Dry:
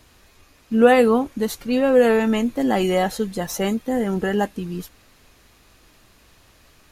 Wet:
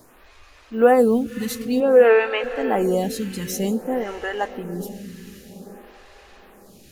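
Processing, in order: G.711 law mismatch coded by mu; 1.8–2.44 speaker cabinet 150–3800 Hz, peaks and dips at 220 Hz -10 dB, 430 Hz +7 dB, 1500 Hz +8 dB, 2500 Hz +10 dB; diffused feedback echo 0.526 s, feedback 55%, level -12.5 dB; photocell phaser 0.53 Hz

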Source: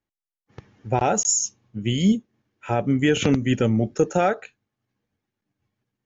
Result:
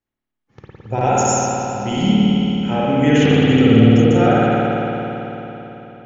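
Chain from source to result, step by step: regenerating reverse delay 0.102 s, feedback 64%, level -10 dB; spring tank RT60 3.8 s, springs 54 ms, chirp 35 ms, DRR -8.5 dB; gain -2 dB

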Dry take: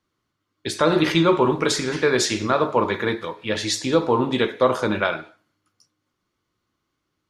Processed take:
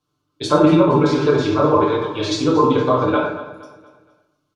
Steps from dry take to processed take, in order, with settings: treble ducked by the level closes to 1900 Hz, closed at -15.5 dBFS; bell 1900 Hz -14.5 dB 0.43 oct; comb 6.8 ms, depth 83%; tempo 1.6×; on a send: feedback echo 0.234 s, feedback 42%, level -16 dB; on the sum: plate-style reverb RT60 0.81 s, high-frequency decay 0.55×, DRR -2.5 dB; gain -1.5 dB

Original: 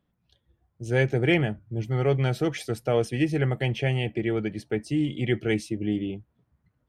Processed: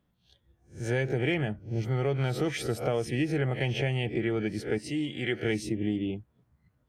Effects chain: spectral swells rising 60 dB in 0.32 s; 4.78–5.43 low shelf 260 Hz -12 dB; compressor, threshold -24 dBFS, peak gain reduction 8 dB

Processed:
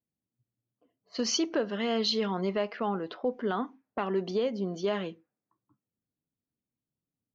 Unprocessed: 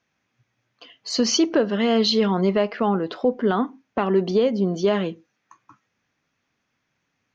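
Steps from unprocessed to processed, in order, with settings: low-pass opened by the level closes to 300 Hz, open at -19 dBFS; low shelf 440 Hz -5 dB; gain -7 dB

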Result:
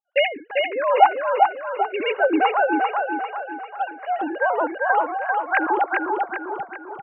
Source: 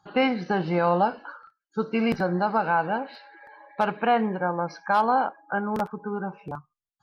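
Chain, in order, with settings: sine-wave speech; gate -40 dBFS, range -38 dB; tremolo 0.87 Hz, depth 84%; feedback echo 0.395 s, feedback 46%, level -3 dB; gain +7 dB

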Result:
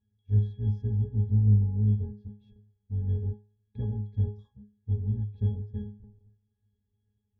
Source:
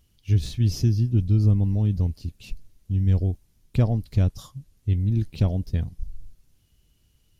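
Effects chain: octaver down 1 oct, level +1 dB; octave resonator G#, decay 0.31 s

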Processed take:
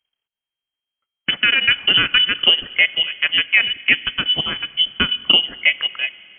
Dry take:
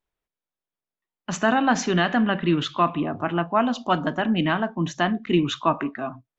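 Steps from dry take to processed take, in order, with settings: transient shaper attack +12 dB, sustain -11 dB; 4.04–5.09 band shelf 650 Hz -11 dB 2.9 oct; limiter -5.5 dBFS, peak gain reduction 10 dB; on a send at -19.5 dB: reverb RT60 3.4 s, pre-delay 40 ms; on the sum: inverted band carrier 3200 Hz; gain +2.5 dB

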